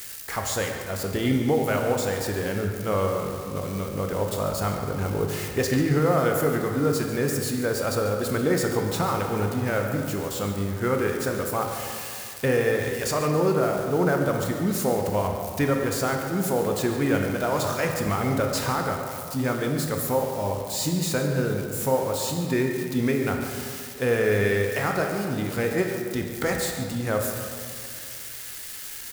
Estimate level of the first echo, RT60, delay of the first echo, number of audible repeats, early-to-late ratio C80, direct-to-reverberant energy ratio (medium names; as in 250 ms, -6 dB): -13.5 dB, 2.3 s, 143 ms, 1, 4.5 dB, 2.0 dB